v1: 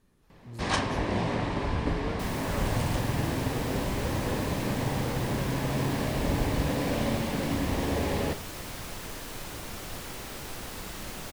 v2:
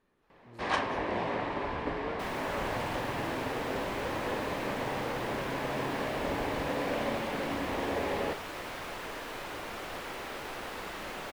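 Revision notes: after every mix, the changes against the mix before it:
second sound +4.0 dB; master: add tone controls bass -14 dB, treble -14 dB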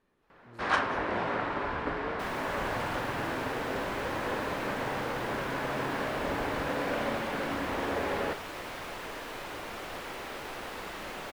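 first sound: add bell 1400 Hz +11.5 dB 0.36 oct

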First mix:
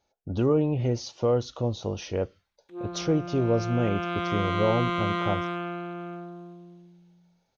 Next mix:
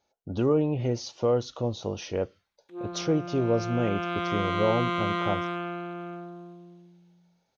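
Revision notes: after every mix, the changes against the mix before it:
master: add low shelf 71 Hz -11 dB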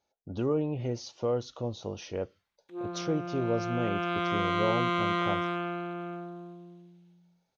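speech -5.0 dB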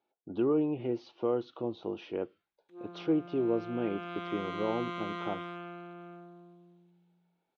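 speech: add speaker cabinet 210–3200 Hz, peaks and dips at 340 Hz +8 dB, 560 Hz -6 dB, 1900 Hz -5 dB; background -10.0 dB

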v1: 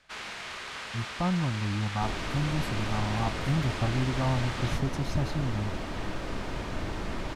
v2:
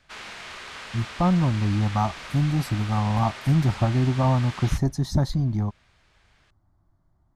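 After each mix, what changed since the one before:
speech +7.5 dB; second sound: muted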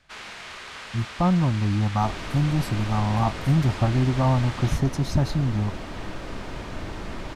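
second sound: unmuted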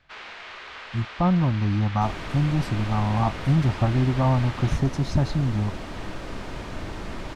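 speech: add air absorption 55 m; first sound: add BPF 310–3800 Hz

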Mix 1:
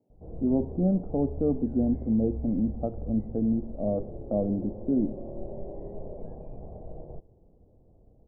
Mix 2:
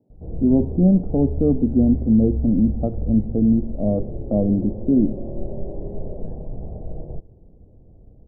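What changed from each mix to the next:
master: add low shelf 460 Hz +11.5 dB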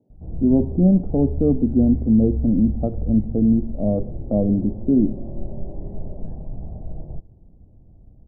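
background: add bell 460 Hz -9.5 dB 0.79 oct

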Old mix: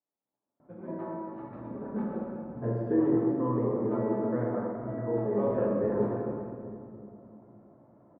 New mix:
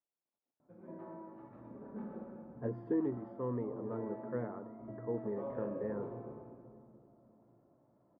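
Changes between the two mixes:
speech: send off; background -11.5 dB

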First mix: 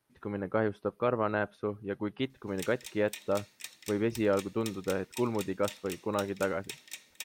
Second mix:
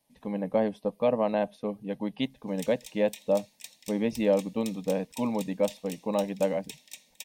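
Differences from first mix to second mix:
speech +6.5 dB; master: add fixed phaser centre 370 Hz, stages 6

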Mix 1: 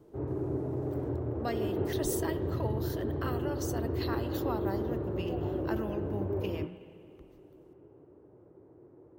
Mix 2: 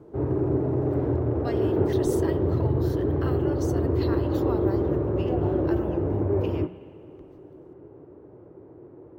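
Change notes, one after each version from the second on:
speech: add high shelf 11000 Hz -10 dB; background +9.0 dB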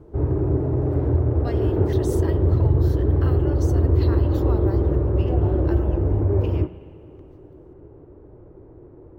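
background: remove HPF 140 Hz 12 dB/oct

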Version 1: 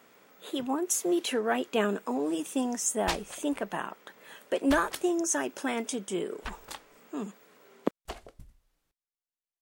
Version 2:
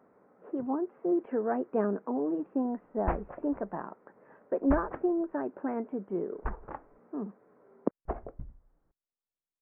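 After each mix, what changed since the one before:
background +8.0 dB; master: add Gaussian blur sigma 7 samples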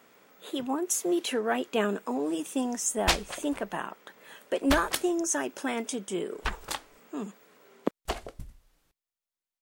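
master: remove Gaussian blur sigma 7 samples

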